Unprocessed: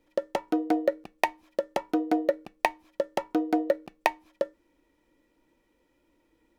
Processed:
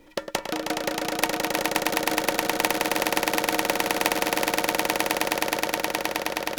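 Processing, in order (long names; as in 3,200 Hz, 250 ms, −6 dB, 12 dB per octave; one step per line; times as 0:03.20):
echo that builds up and dies away 105 ms, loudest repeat 8, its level −4 dB
every bin compressed towards the loudest bin 2 to 1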